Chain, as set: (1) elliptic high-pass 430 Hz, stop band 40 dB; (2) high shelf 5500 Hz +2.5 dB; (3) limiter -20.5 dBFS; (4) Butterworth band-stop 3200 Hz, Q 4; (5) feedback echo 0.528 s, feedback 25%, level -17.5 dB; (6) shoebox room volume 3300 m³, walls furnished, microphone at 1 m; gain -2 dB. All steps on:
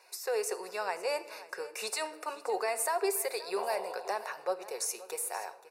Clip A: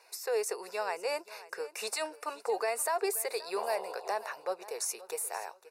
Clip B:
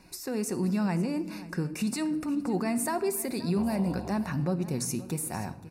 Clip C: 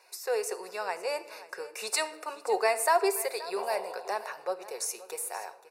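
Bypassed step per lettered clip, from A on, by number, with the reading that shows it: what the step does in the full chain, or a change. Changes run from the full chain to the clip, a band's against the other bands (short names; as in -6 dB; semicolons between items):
6, echo-to-direct -8.5 dB to -17.5 dB; 1, 250 Hz band +23.0 dB; 3, crest factor change +4.5 dB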